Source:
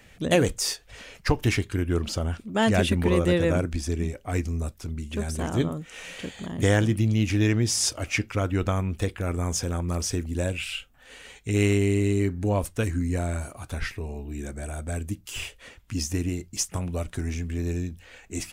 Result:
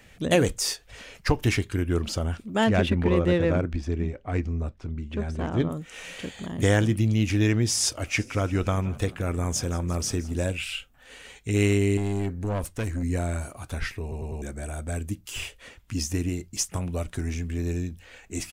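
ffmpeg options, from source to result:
-filter_complex "[0:a]asettb=1/sr,asplit=3[s0][s1][s2];[s0]atrim=end=2.644[s3];[s1]atrim=start=2.64:end=5.7,asetpts=PTS-STARTPTS,afade=t=in:d=0.004:c=qsin,afade=t=out:st=3.056:d=0.004:c=qsin,adynamicsmooth=sensitivity=1.5:basefreq=2900[s4];[s2]atrim=start=5.696[s5];[s3][s4]acrossfade=d=0.004:c1=hsin:c2=qsin[s6];[s6][s5]acrossfade=d=0.004:c1=qsin:c2=hsin,asplit=3[s7][s8][s9];[s7]afade=t=out:st=8.17:d=0.02[s10];[s8]asplit=6[s11][s12][s13][s14][s15][s16];[s12]adelay=173,afreqshift=37,volume=0.106[s17];[s13]adelay=346,afreqshift=74,volume=0.0646[s18];[s14]adelay=519,afreqshift=111,volume=0.0394[s19];[s15]adelay=692,afreqshift=148,volume=0.024[s20];[s16]adelay=865,afreqshift=185,volume=0.0146[s21];[s11][s17][s18][s19][s20][s21]amix=inputs=6:normalize=0,afade=t=in:st=8.17:d=0.02,afade=t=out:st=10.54:d=0.02[s22];[s9]afade=t=in:st=10.54:d=0.02[s23];[s10][s22][s23]amix=inputs=3:normalize=0,asettb=1/sr,asplit=3[s24][s25][s26];[s24]atrim=end=11.974[s27];[s25]atrim=start=11.97:end=13.03,asetpts=PTS-STARTPTS,afade=t=in:d=0.004:c=qsin,afade=t=out:st=1.056:d=0.004:c=qsin,aeval=exprs='(tanh(14.1*val(0)+0.3)-tanh(0.3))/14.1':c=same[s28];[s26]atrim=start=13.026[s29];[s27][s28]acrossfade=d=0.004:c1=hsin:c2=qsin[s30];[s30][s29]acrossfade=d=0.004:c1=qsin:c2=hsin,asplit=5[s31][s32][s33][s34][s35];[s31]atrim=end=14.122[s36];[s32]atrim=start=14.018:end=14.122[s37];[s33]atrim=start=14.018:end=14.122[s38];[s34]atrim=start=14.018:end=14.122[s39];[s35]atrim=start=14.418[s40];[s36][s37]acrossfade=d=0.004:c1=hsin:c2=hsin[s41];[s41][s38]acrossfade=d=0.004:c1=hsin:c2=hsin[s42];[s42][s39]acrossfade=d=0.004:c1=hsin:c2=hsin[s43];[s43][s40]acrossfade=d=0.004:c1=hsin:c2=hsin"

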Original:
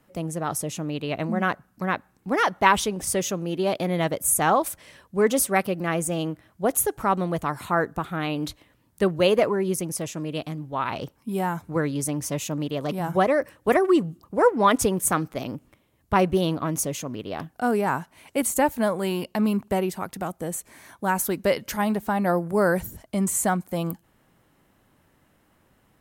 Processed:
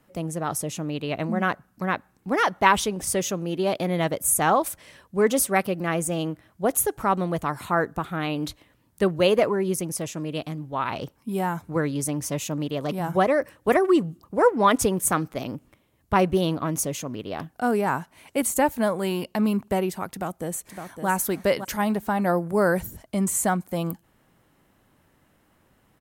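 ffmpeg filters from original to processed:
-filter_complex "[0:a]asplit=2[s0][s1];[s1]afade=t=in:st=20.12:d=0.01,afade=t=out:st=21.08:d=0.01,aecho=0:1:560|1120|1680:0.421697|0.0843393|0.0168679[s2];[s0][s2]amix=inputs=2:normalize=0"

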